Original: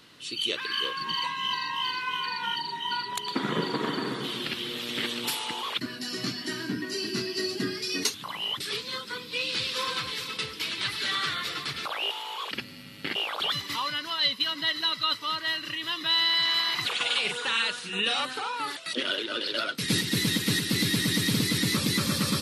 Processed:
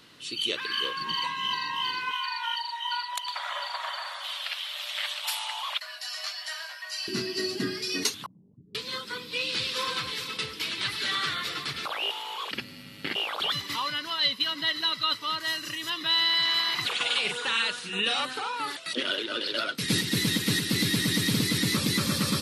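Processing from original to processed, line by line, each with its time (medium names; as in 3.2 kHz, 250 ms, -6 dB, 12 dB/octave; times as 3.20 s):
2.11–7.08 s: Chebyshev high-pass 570 Hz, order 8
8.26–8.75 s: four-pole ladder low-pass 260 Hz, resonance 30%
15.40–15.90 s: resonant high shelf 4.7 kHz +8 dB, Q 1.5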